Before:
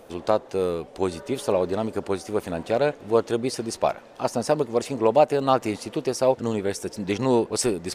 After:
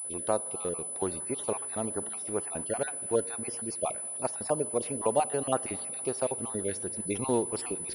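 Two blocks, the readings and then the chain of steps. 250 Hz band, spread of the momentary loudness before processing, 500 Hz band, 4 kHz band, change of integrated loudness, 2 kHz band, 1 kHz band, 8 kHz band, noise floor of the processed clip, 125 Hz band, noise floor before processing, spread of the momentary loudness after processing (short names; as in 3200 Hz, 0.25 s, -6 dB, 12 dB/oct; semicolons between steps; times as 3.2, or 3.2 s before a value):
-9.0 dB, 8 LU, -9.0 dB, -12.5 dB, -6.5 dB, -8.5 dB, -8.5 dB, +5.0 dB, -38 dBFS, -9.0 dB, -47 dBFS, 4 LU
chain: random spectral dropouts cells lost 31%; spring tank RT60 3.1 s, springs 41/51 ms, chirp 25 ms, DRR 18 dB; pulse-width modulation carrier 10000 Hz; gain -7 dB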